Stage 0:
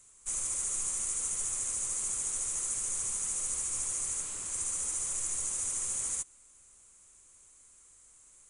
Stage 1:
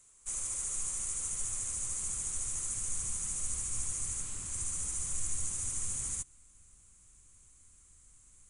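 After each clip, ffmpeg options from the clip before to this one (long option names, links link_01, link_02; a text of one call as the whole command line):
ffmpeg -i in.wav -af "asubboost=boost=5:cutoff=210,volume=-3dB" out.wav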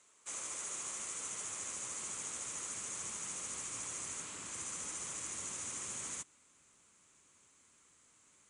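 ffmpeg -i in.wav -af "highpass=280,lowpass=4500,volume=5dB" out.wav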